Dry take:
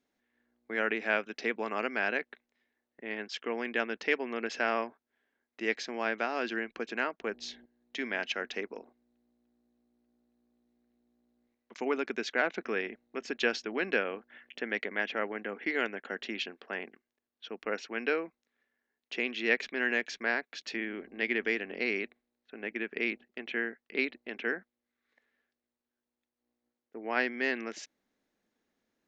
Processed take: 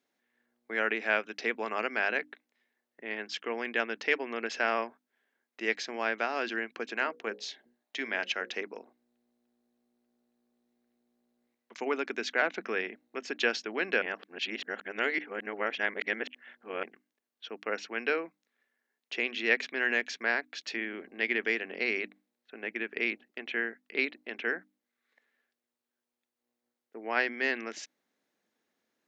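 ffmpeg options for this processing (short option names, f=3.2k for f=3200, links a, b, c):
-filter_complex "[0:a]asettb=1/sr,asplit=3[a][b][c];[a]atrim=end=6.954[d];[b]atrim=start=6.95:end=8.54,asetpts=PTS-STARTPTS,afade=t=in:d=0.004:c=qsin,afade=t=out:st=1.586:d=0.004:c=qsin,bandreject=f=60:t=h:w=6,bandreject=f=120:t=h:w=6,bandreject=f=180:t=h:w=6,bandreject=f=240:t=h:w=6,bandreject=f=300:t=h:w=6,bandreject=f=360:t=h:w=6,bandreject=f=420:t=h:w=6,bandreject=f=480:t=h:w=6,bandreject=f=540:t=h:w=6[e];[c]atrim=start=8.536[f];[d][e]acrossfade=d=0.004:c1=hsin:c2=qsin[g];[g][f]acrossfade=d=0.004:c1=qsin:c2=hsin,asplit=3[h][i][j];[h]atrim=end=14.022[k];[i]atrim=start=14.018:end=16.832,asetpts=PTS-STARTPTS,areverse[l];[j]atrim=start=16.828[m];[k][l]acrossfade=d=0.004:c1=hsin:c2=hsin[n];[n][m]acrossfade=d=0.004:c1=hsin:c2=hsin,highpass=100,lowshelf=f=360:g=-6,bandreject=f=50:t=h:w=6,bandreject=f=100:t=h:w=6,bandreject=f=150:t=h:w=6,bandreject=f=200:t=h:w=6,bandreject=f=250:t=h:w=6,bandreject=f=300:t=h:w=6,volume=2dB"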